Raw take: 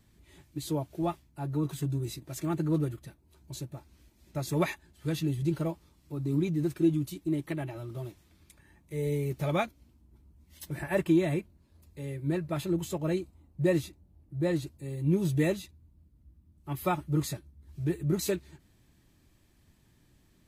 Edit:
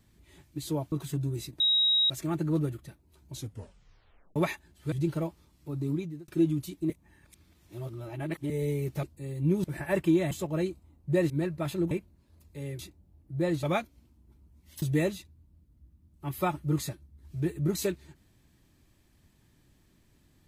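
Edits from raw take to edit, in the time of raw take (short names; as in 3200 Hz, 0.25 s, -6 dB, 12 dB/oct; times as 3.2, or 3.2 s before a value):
0.92–1.61 cut
2.29 add tone 3810 Hz -21 dBFS 0.50 s
3.52 tape stop 1.03 s
5.11–5.36 cut
6.24–6.72 fade out
7.34–8.94 reverse
9.47–10.66 swap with 14.65–15.26
11.33–12.21 swap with 12.82–13.81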